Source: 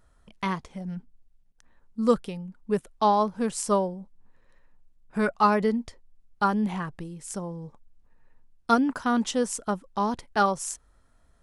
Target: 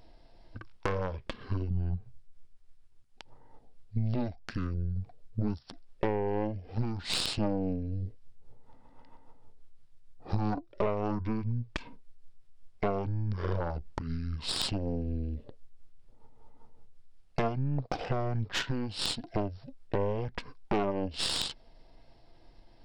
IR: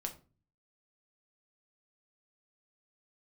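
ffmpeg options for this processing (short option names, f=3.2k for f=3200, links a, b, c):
-af "asetrate=22050,aresample=44100,acompressor=threshold=-36dB:ratio=12,aeval=exprs='0.0794*(cos(1*acos(clip(val(0)/0.0794,-1,1)))-cos(1*PI/2))+0.0158*(cos(6*acos(clip(val(0)/0.0794,-1,1)))-cos(6*PI/2))':c=same,volume=7dB"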